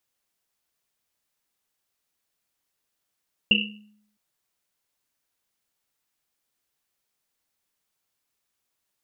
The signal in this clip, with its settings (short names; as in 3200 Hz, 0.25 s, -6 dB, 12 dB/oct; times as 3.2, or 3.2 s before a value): Risset drum length 0.66 s, pitch 210 Hz, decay 0.74 s, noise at 2800 Hz, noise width 250 Hz, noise 65%